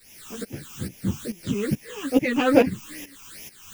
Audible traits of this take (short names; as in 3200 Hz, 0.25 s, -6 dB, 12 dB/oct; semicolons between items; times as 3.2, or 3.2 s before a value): a quantiser's noise floor 8-bit, dither triangular; phasing stages 8, 2.4 Hz, lowest notch 550–1300 Hz; tremolo saw up 2.3 Hz, depth 85%; a shimmering, thickened sound